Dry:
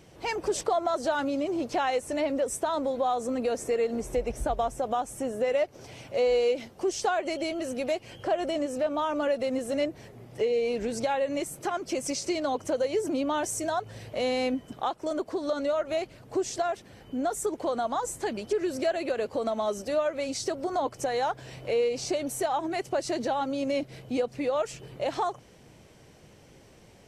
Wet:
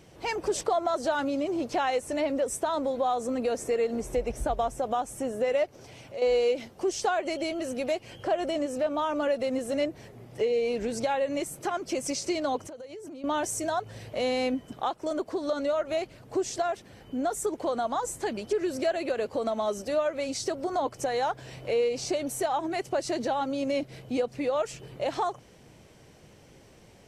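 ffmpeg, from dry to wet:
-filter_complex "[0:a]asettb=1/sr,asplit=3[s0][s1][s2];[s0]atrim=end=5.694[s3];[s1]atrim=start=5.69:end=6.22,asetpts=PTS-STARTPTS,afade=t=in:d=0.004:c=qsin,afade=t=out:st=0.526:d=0.004:c=qsin,acompressor=threshold=0.00398:ratio=1.5:attack=3.2:release=140:knee=1:detection=peak[s4];[s2]atrim=start=6.216[s5];[s3][s4]acrossfade=d=0.004:c1=hsin:c2=qsin[s6];[s6][s5]acrossfade=d=0.004:c1=qsin:c2=hsin,asettb=1/sr,asplit=3[s7][s8][s9];[s7]atrim=end=12.634[s10];[s8]atrim=start=12.63:end=13.24,asetpts=PTS-STARTPTS,afade=t=in:d=0.004:c=qsin,afade=t=out:st=0.606:d=0.004:c=qsin,acompressor=threshold=0.0112:ratio=12:attack=3.2:release=140:knee=1:detection=peak[s11];[s9]atrim=start=13.236[s12];[s10][s11]acrossfade=d=0.004:c1=hsin:c2=qsin[s13];[s13][s12]acrossfade=d=0.004:c1=qsin:c2=hsin"

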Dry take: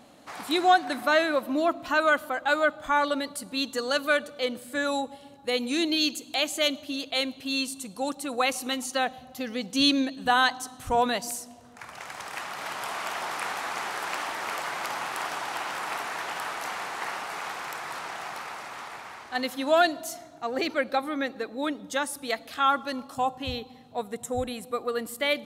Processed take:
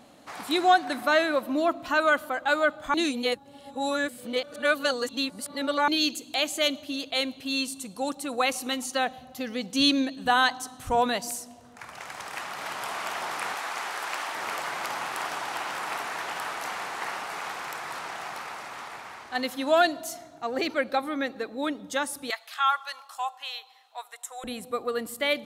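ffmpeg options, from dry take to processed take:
-filter_complex "[0:a]asettb=1/sr,asplit=3[s0][s1][s2];[s0]atrim=end=13.554[s3];[s1]atrim=start=13.55:end=14.35,asetpts=PTS-STARTPTS,afade=t=in:d=0.004:c=qsin,afade=t=out:st=0.796:d=0.004:c=qsin,lowshelf=f=290:g=-10.5[s4];[s2]atrim=start=14.346[s5];[s3][s4]acrossfade=d=0.004:c1=hsin:c2=qsin[s6];[s6][s5]acrossfade=d=0.004:c1=qsin:c2=hsin,asettb=1/sr,asplit=3[s7][s8][s9];[s7]atrim=end=22.304[s10];[s8]atrim=start=22.3:end=24.44,asetpts=PTS-STARTPTS,afade=t=in:d=0.004:c=qsin,afade=t=out:st=2.136:d=0.004:c=qsin,highpass=f=860:w=0.5412,highpass=f=860:w=1.3066[s11];[s9]atrim=start=24.436[s12];[s10][s11]acrossfade=d=0.004:c1=hsin:c2=qsin[s13];[s13][s12]acrossfade=d=0.004:c1=qsin:c2=hsin,asplit=3[s14][s15][s16];[s14]atrim=end=2.942[s17];[s15]atrim=start=2.938:end=5.882,asetpts=PTS-STARTPTS,areverse[s18];[s16]atrim=start=5.878[s19];[s17][s18]acrossfade=d=0.004:c1=hsin:c2=hsin[s20];[s20][s19]acrossfade=d=0.004:c1=hsin:c2=hsin"

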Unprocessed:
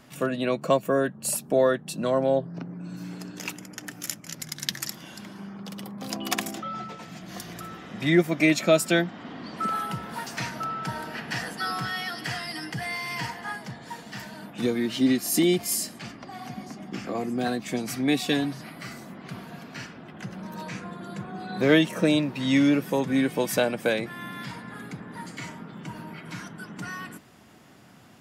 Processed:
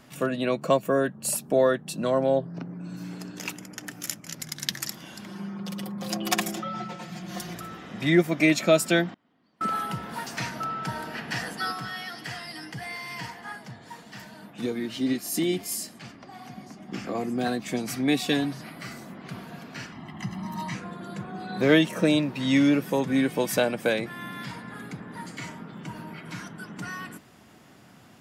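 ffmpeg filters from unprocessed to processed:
-filter_complex "[0:a]asettb=1/sr,asplit=3[s0][s1][s2];[s0]atrim=end=5.284[s3];[s1]atrim=start=5.28:end=7.55,asetpts=PTS-STARTPTS,afade=t=in:d=0.004:c=qsin,afade=t=out:st=2.266:d=0.004:c=qsin,aecho=1:1:5.6:0.78,atrim=end_sample=100107[s4];[s2]atrim=start=7.546[s5];[s3][s4]acrossfade=d=0.004:c1=hsin:c2=qsin[s6];[s6][s5]acrossfade=d=0.004:c1=qsin:c2=hsin,asettb=1/sr,asplit=3[s7][s8][s9];[s7]atrim=end=9.144[s10];[s8]atrim=start=9.14:end=9.68,asetpts=PTS-STARTPTS,afade=t=in:d=0.004:c=qsin,afade=t=out:st=0.536:d=0.004:c=qsin,agate=range=0.0355:threshold=0.0251:ratio=16:release=100:detection=peak[s11];[s9]atrim=start=9.676[s12];[s10][s11]acrossfade=d=0.004:c1=hsin:c2=qsin[s13];[s13][s12]acrossfade=d=0.004:c1=qsin:c2=hsin,asplit=3[s14][s15][s16];[s14]afade=t=out:st=11.71:d=0.02[s17];[s15]flanger=delay=2:depth=9.3:regen=83:speed=1.7:shape=triangular,afade=t=in:st=11.71:d=0.02,afade=t=out:st=16.88:d=0.02[s18];[s16]afade=t=in:st=16.88:d=0.02[s19];[s17][s18][s19]amix=inputs=3:normalize=0,asettb=1/sr,asplit=3[s20][s21][s22];[s20]atrim=end=19.924[s23];[s21]atrim=start=19.92:end=20.75,asetpts=PTS-STARTPTS,afade=t=in:d=0.004:c=qsin,afade=t=out:st=0.826:d=0.004:c=qsin,aecho=1:1:1:0.9,atrim=end_sample=36603[s24];[s22]atrim=start=20.746[s25];[s23][s24]acrossfade=d=0.004:c1=hsin:c2=qsin[s26];[s26][s25]acrossfade=d=0.004:c1=qsin:c2=hsin"

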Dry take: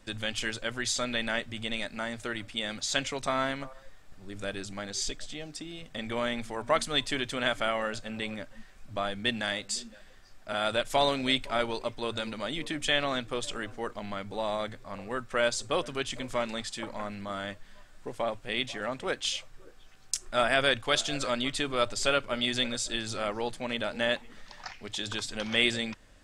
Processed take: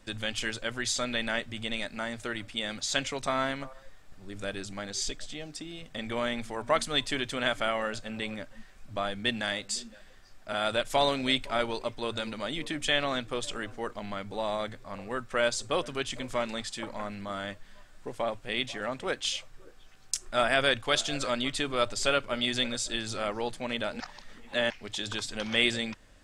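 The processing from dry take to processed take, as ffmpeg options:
-filter_complex "[0:a]asplit=3[s0][s1][s2];[s0]atrim=end=24.002[s3];[s1]atrim=start=23.998:end=24.702,asetpts=PTS-STARTPTS,areverse[s4];[s2]atrim=start=24.698[s5];[s3][s4]acrossfade=d=0.004:c1=hsin:c2=hsin[s6];[s6][s5]acrossfade=d=0.004:c1=hsin:c2=hsin"

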